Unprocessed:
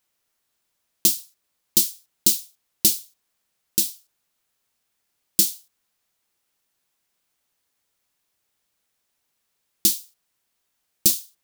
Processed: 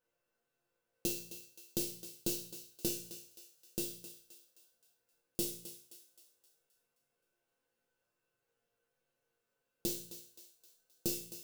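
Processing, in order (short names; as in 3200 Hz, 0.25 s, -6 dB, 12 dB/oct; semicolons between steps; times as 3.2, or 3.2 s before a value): tilt shelf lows +7 dB, about 1400 Hz; de-hum 58.27 Hz, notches 3; in parallel at +0.5 dB: compressor, threshold -28 dBFS, peak gain reduction 11.5 dB; on the sum: resonator bank A#2 minor, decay 0.49 s; small resonant body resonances 490/1500/2700 Hz, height 16 dB, ringing for 65 ms; on a send: thinning echo 0.262 s, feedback 46%, high-pass 580 Hz, level -12 dB; on the sum: gain +1.5 dB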